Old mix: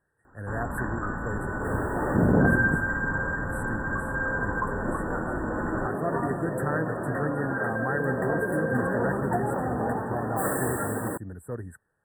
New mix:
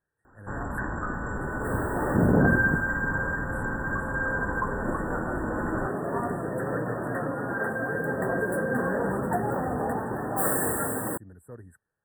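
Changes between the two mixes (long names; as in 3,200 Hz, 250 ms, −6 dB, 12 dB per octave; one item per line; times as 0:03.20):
speech −9.0 dB
second sound: add high-shelf EQ 8,000 Hz +5.5 dB
master: add high-shelf EQ 10,000 Hz +3 dB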